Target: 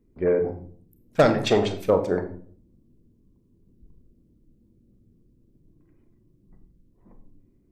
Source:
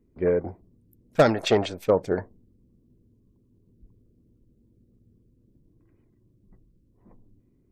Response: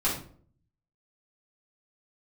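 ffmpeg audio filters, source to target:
-filter_complex "[0:a]asplit=2[s0][s1];[1:a]atrim=start_sample=2205,adelay=29[s2];[s1][s2]afir=irnorm=-1:irlink=0,volume=0.141[s3];[s0][s3]amix=inputs=2:normalize=0"

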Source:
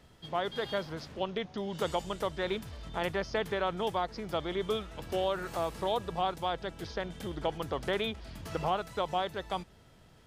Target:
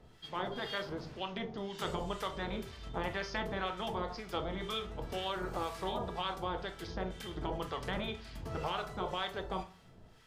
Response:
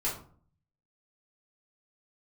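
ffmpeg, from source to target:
-filter_complex "[0:a]asplit=2[s0][s1];[1:a]atrim=start_sample=2205,lowpass=7100,highshelf=f=4700:g=3[s2];[s1][s2]afir=irnorm=-1:irlink=0,volume=0.355[s3];[s0][s3]amix=inputs=2:normalize=0,acrossover=split=1100[s4][s5];[s4]aeval=exprs='val(0)*(1-0.7/2+0.7/2*cos(2*PI*2*n/s))':c=same[s6];[s5]aeval=exprs='val(0)*(1-0.7/2-0.7/2*cos(2*PI*2*n/s))':c=same[s7];[s6][s7]amix=inputs=2:normalize=0,afftfilt=real='re*lt(hypot(re,im),0.178)':imag='im*lt(hypot(re,im),0.178)':win_size=1024:overlap=0.75,volume=0.891"

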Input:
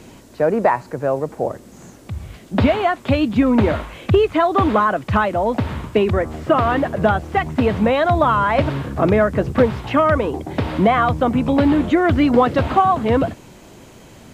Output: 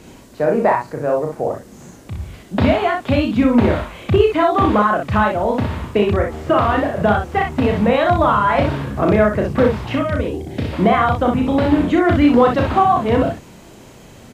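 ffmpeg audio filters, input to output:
-filter_complex "[0:a]asettb=1/sr,asplit=3[s0][s1][s2];[s0]atrim=end=9.954[s3];[s1]atrim=start=9.95:end=10.73,asetpts=PTS-STARTPTS,afade=t=in:d=0.004:c=qsin,afade=t=out:st=0.776:d=0.004:c=qsin,equalizer=f=1000:w=1.2:g=-14[s4];[s2]atrim=start=10.726[s5];[s3][s4]acrossfade=d=0.004:c1=hsin:c2=qsin[s6];[s6][s5]acrossfade=d=0.004:c1=qsin:c2=hsin,aecho=1:1:34|62:0.596|0.562,volume=0.891"

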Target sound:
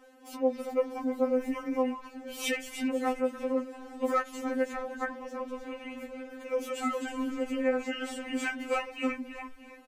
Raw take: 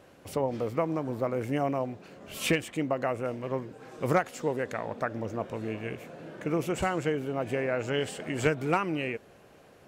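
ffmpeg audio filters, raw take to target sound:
-filter_complex "[0:a]asplit=5[s0][s1][s2][s3][s4];[s1]adelay=317,afreqshift=-87,volume=0.398[s5];[s2]adelay=634,afreqshift=-174,volume=0.155[s6];[s3]adelay=951,afreqshift=-261,volume=0.0603[s7];[s4]adelay=1268,afreqshift=-348,volume=0.0237[s8];[s0][s5][s6][s7][s8]amix=inputs=5:normalize=0,afftfilt=real='re*3.46*eq(mod(b,12),0)':imag='im*3.46*eq(mod(b,12),0)':win_size=2048:overlap=0.75"

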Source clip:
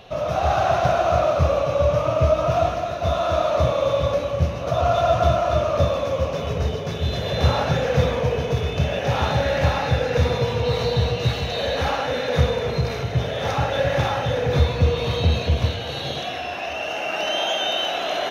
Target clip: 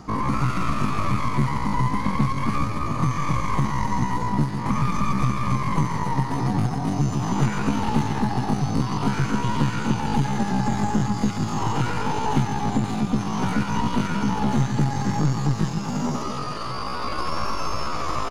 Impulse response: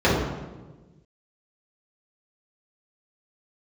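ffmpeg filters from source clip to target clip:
-filter_complex "[0:a]asplit=2[s0][s1];[s1]aecho=0:1:348:0.1[s2];[s0][s2]amix=inputs=2:normalize=0,aeval=exprs='0.531*(cos(1*acos(clip(val(0)/0.531,-1,1)))-cos(1*PI/2))+0.106*(cos(2*acos(clip(val(0)/0.531,-1,1)))-cos(2*PI/2))+0.0422*(cos(3*acos(clip(val(0)/0.531,-1,1)))-cos(3*PI/2))+0.119*(cos(4*acos(clip(val(0)/0.531,-1,1)))-cos(4*PI/2))+0.00944*(cos(5*acos(clip(val(0)/0.531,-1,1)))-cos(5*PI/2))':c=same,asplit=2[s3][s4];[s4]aecho=0:1:135|270:0.251|0.0427[s5];[s3][s5]amix=inputs=2:normalize=0,asetrate=76340,aresample=44100,atempo=0.577676,tiltshelf=f=680:g=9.5,acrossover=split=1100|3900[s6][s7][s8];[s6]acompressor=threshold=0.0631:ratio=4[s9];[s7]acompressor=threshold=0.0178:ratio=4[s10];[s8]acompressor=threshold=0.00501:ratio=4[s11];[s9][s10][s11]amix=inputs=3:normalize=0,volume=1.58"

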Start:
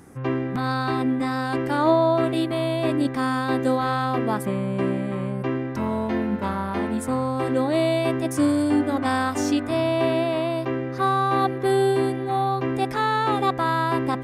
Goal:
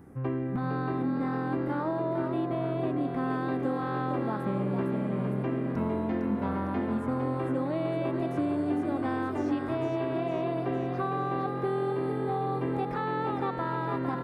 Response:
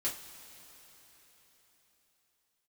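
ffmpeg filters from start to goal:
-filter_complex "[0:a]asetnsamples=n=441:p=0,asendcmd='3.3 equalizer g -5.5',equalizer=f=6600:w=0.48:g=-14,acompressor=threshold=0.0631:ratio=6,lowshelf=f=370:g=4.5,asplit=7[s0][s1][s2][s3][s4][s5][s6];[s1]adelay=456,afreqshift=43,volume=0.473[s7];[s2]adelay=912,afreqshift=86,volume=0.221[s8];[s3]adelay=1368,afreqshift=129,volume=0.105[s9];[s4]adelay=1824,afreqshift=172,volume=0.049[s10];[s5]adelay=2280,afreqshift=215,volume=0.0232[s11];[s6]adelay=2736,afreqshift=258,volume=0.0108[s12];[s0][s7][s8][s9][s10][s11][s12]amix=inputs=7:normalize=0,acrossover=split=3600[s13][s14];[s14]acompressor=threshold=0.00112:ratio=4:attack=1:release=60[s15];[s13][s15]amix=inputs=2:normalize=0,volume=0.531"

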